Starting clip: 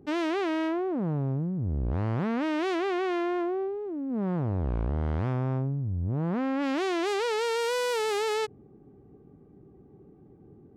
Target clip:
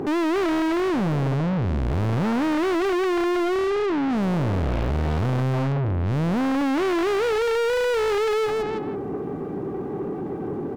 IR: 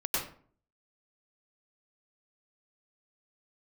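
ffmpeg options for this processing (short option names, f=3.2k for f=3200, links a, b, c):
-filter_complex "[0:a]asplit=2[a][b];[b]adelay=164,lowpass=f=2.8k:p=1,volume=-17dB,asplit=2[c][d];[d]adelay=164,lowpass=f=2.8k:p=1,volume=0.32,asplit=2[e][f];[f]adelay=164,lowpass=f=2.8k:p=1,volume=0.32[g];[a][c][e][g]amix=inputs=4:normalize=0,asplit=2[h][i];[i]highpass=f=720:p=1,volume=41dB,asoftclip=type=tanh:threshold=-16.5dB[j];[h][j]amix=inputs=2:normalize=0,lowpass=f=2.5k:p=1,volume=-6dB"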